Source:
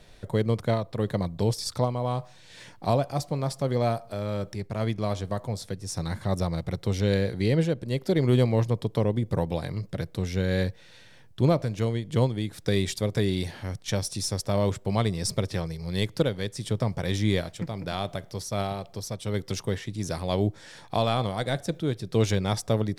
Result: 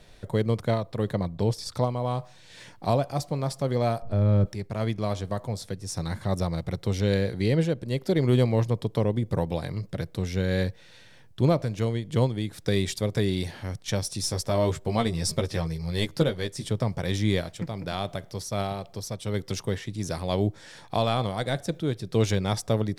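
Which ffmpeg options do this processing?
ffmpeg -i in.wav -filter_complex "[0:a]asettb=1/sr,asplit=3[link_01][link_02][link_03];[link_01]atrim=end=1.134[link_04];[link_02]atrim=start=1.13:end=1.74,asetpts=PTS-STARTPTS,afade=type=in:duration=0.004:curve=qsin,afade=type=out:start_time=0.606:duration=0.004:curve=qsin,highshelf=frequency=4600:gain=-7[link_05];[link_03]atrim=start=1.736[link_06];[link_04][link_05]acrossfade=duration=0.004:curve1=hsin:curve2=qsin[link_07];[link_07][link_06]acrossfade=duration=0.004:curve1=qsin:curve2=hsin,asettb=1/sr,asplit=3[link_08][link_09][link_10];[link_08]atrim=end=4.024[link_11];[link_09]atrim=start=4.02:end=4.46,asetpts=PTS-STARTPTS,afade=type=in:duration=0.004:curve=qsin,afade=type=out:start_time=0.436:duration=0.004:curve=qsin,aemphasis=mode=reproduction:type=riaa[link_12];[link_10]atrim=start=4.456[link_13];[link_11][link_12]acrossfade=duration=0.004:curve1=hsin:curve2=qsin[link_14];[link_14][link_13]acrossfade=duration=0.004:curve1=qsin:curve2=hsin,asettb=1/sr,asplit=3[link_15][link_16][link_17];[link_15]atrim=end=14.224[link_18];[link_16]atrim=start=14.22:end=16.68,asetpts=PTS-STARTPTS,afade=type=in:duration=0.004:curve=qsin,afade=type=out:start_time=2.456:duration=0.004:curve=qsin,asplit=2[link_19][link_20];[link_20]adelay=13,volume=-5dB[link_21];[link_19][link_21]amix=inputs=2:normalize=0,atrim=end_sample=108486[link_22];[link_17]atrim=start=16.676[link_23];[link_18][link_22]acrossfade=duration=0.004:curve1=hsin:curve2=qsin[link_24];[link_24][link_23]acrossfade=duration=0.004:curve1=qsin:curve2=hsin" out.wav

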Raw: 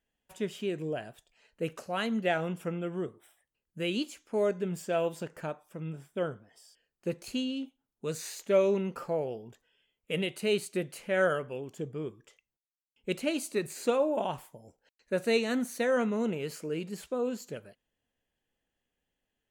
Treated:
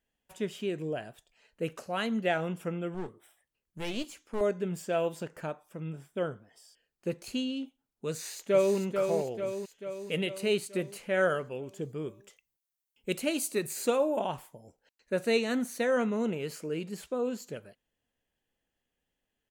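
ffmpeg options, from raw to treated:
ffmpeg -i in.wav -filter_complex "[0:a]asettb=1/sr,asplit=3[link_01][link_02][link_03];[link_01]atrim=end=2.944[link_04];[link_02]atrim=start=2.94:end=4.41,asetpts=PTS-STARTPTS,afade=type=in:duration=0.004:curve=qsin,afade=type=out:start_time=1.466:duration=0.004:curve=qsin,aeval=exprs='clip(val(0),-1,0.00596)':channel_layout=same[link_05];[link_03]atrim=start=4.406[link_06];[link_04][link_05]acrossfade=duration=0.004:curve1=hsin:curve2=qsin[link_07];[link_07][link_06]acrossfade=duration=0.004:curve1=qsin:curve2=hsin,asplit=2[link_08][link_09];[link_09]afade=type=in:start_time=8.1:duration=0.01,afade=type=out:start_time=8.77:duration=0.01,aecho=0:1:440|880|1320|1760|2200|2640|3080|3520:0.530884|0.318531|0.191118|0.114671|0.0688026|0.0412816|0.0247689|0.0148614[link_10];[link_08][link_10]amix=inputs=2:normalize=0,asettb=1/sr,asplit=3[link_11][link_12][link_13];[link_11]atrim=end=11.824[link_14];[link_12]atrim=start=11.82:end=14.19,asetpts=PTS-STARTPTS,afade=type=in:duration=0.004:curve=qsin,afade=type=out:start_time=2.366:duration=0.004:curve=qsin,highshelf=frequency=7700:gain=10.5[link_15];[link_13]atrim=start=14.186[link_16];[link_14][link_15]acrossfade=duration=0.004:curve1=hsin:curve2=qsin[link_17];[link_17][link_16]acrossfade=duration=0.004:curve1=qsin:curve2=hsin" out.wav

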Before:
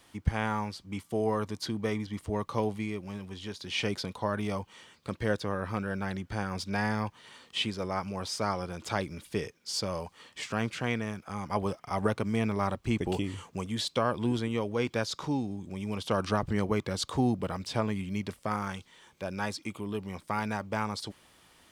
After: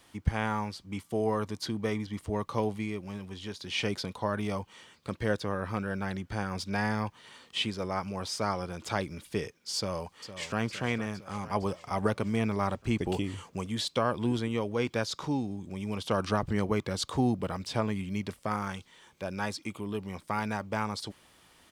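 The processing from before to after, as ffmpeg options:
ffmpeg -i in.wav -filter_complex "[0:a]asplit=2[link_01][link_02];[link_02]afade=type=in:start_time=9.76:duration=0.01,afade=type=out:start_time=10.6:duration=0.01,aecho=0:1:460|920|1380|1840|2300|2760|3220|3680:0.251189|0.163273|0.106127|0.0689827|0.0448387|0.0291452|0.0189444|0.0123138[link_03];[link_01][link_03]amix=inputs=2:normalize=0" out.wav

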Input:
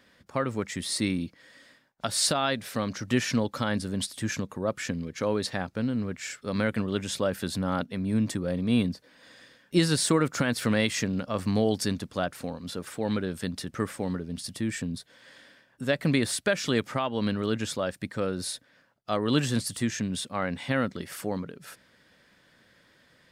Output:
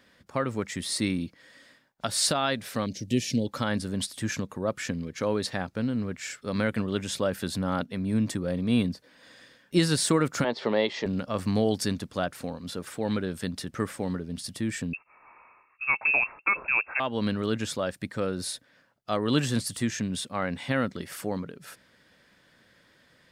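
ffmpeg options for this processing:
ffmpeg -i in.wav -filter_complex "[0:a]asettb=1/sr,asplit=3[link_01][link_02][link_03];[link_01]atrim=end=2.864[link_04];[link_02]atrim=start=2.86:end=3.47,asetpts=PTS-STARTPTS,afade=type=in:duration=0.004:curve=qsin,afade=type=out:start_time=0.606:duration=0.004:curve=qsin,asuperstop=centerf=1200:order=4:qfactor=0.51[link_05];[link_03]atrim=start=3.466[link_06];[link_04][link_05]acrossfade=duration=0.004:curve1=hsin:curve2=qsin[link_07];[link_07][link_06]acrossfade=duration=0.004:curve1=qsin:curve2=hsin,asettb=1/sr,asplit=3[link_08][link_09][link_10];[link_08]atrim=end=10.444[link_11];[link_09]atrim=start=10.44:end=11.06,asetpts=PTS-STARTPTS,afade=type=in:duration=0.004:curve=qsin,afade=type=out:start_time=0.616:duration=0.004:curve=qsin,highpass=260,equalizer=frequency=270:width_type=q:width=4:gain=-5,equalizer=frequency=390:width_type=q:width=4:gain=9,equalizer=frequency=600:width_type=q:width=4:gain=5,equalizer=frequency=870:width_type=q:width=4:gain=9,equalizer=frequency=1500:width_type=q:width=4:gain=-9,equalizer=frequency=2500:width_type=q:width=4:gain=-7,lowpass=frequency=4300:width=0.5412,lowpass=frequency=4300:width=1.3066[link_12];[link_10]atrim=start=11.056[link_13];[link_11][link_12]acrossfade=duration=0.004:curve1=hsin:curve2=qsin[link_14];[link_14][link_13]acrossfade=duration=0.004:curve1=qsin:curve2=hsin,asettb=1/sr,asplit=3[link_15][link_16][link_17];[link_15]atrim=end=14.934[link_18];[link_16]atrim=start=14.93:end=17,asetpts=PTS-STARTPTS,afade=type=in:duration=0.004:curve=qsin,afade=type=out:start_time=2.066:duration=0.004:curve=qsin,lowpass=frequency=2400:width_type=q:width=0.5098,lowpass=frequency=2400:width_type=q:width=0.6013,lowpass=frequency=2400:width_type=q:width=0.9,lowpass=frequency=2400:width_type=q:width=2.563,afreqshift=-2800[link_19];[link_17]atrim=start=16.996[link_20];[link_18][link_19]acrossfade=duration=0.004:curve1=hsin:curve2=qsin[link_21];[link_21][link_20]acrossfade=duration=0.004:curve1=qsin:curve2=hsin" out.wav

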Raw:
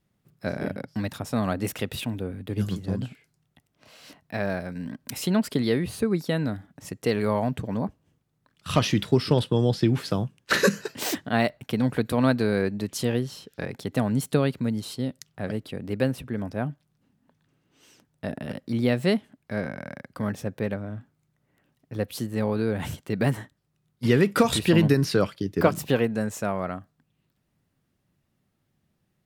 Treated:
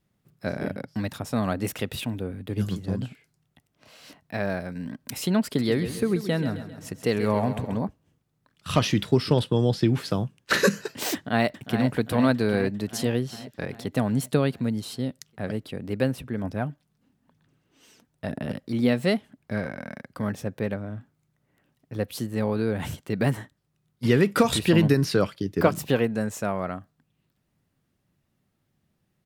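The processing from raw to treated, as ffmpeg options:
ffmpeg -i in.wav -filter_complex "[0:a]asettb=1/sr,asplit=3[link_01][link_02][link_03];[link_01]atrim=end=5.454[link_04];[link_02]atrim=start=5.45:end=7.84,asetpts=PTS-STARTPTS,afade=type=in:duration=0.004:curve=qsin,afade=type=out:start_time=2.386:duration=0.004:curve=qsin,aecho=1:1:133|266|399|532|665:0.282|0.144|0.0733|0.0374|0.0191,atrim=end_sample=105399[link_05];[link_03]atrim=start=7.836[link_06];[link_04][link_05]acrossfade=duration=0.004:curve1=hsin:curve2=qsin[link_07];[link_07][link_06]acrossfade=duration=0.004:curve1=qsin:curve2=hsin,asplit=2[link_08][link_09];[link_09]afade=type=in:start_time=11.14:duration=0.01,afade=type=out:start_time=11.91:duration=0.01,aecho=0:1:400|800|1200|1600|2000|2400|2800|3200|3600:0.375837|0.244294|0.158791|0.103214|0.0670893|0.0436081|0.0283452|0.0184244|0.0119759[link_10];[link_08][link_10]amix=inputs=2:normalize=0,asettb=1/sr,asplit=3[link_11][link_12][link_13];[link_11]atrim=end=16.444[link_14];[link_12]atrim=start=16.44:end=20.03,asetpts=PTS-STARTPTS,afade=type=in:duration=0.004:curve=qsin,afade=type=out:start_time=3.586:duration=0.004:curve=qsin,aphaser=in_gain=1:out_gain=1:delay=4.6:decay=0.33:speed=1:type=sinusoidal[link_15];[link_13]atrim=start=20.026[link_16];[link_14][link_15]acrossfade=duration=0.004:curve1=hsin:curve2=qsin[link_17];[link_17][link_16]acrossfade=duration=0.004:curve1=qsin:curve2=hsin" out.wav

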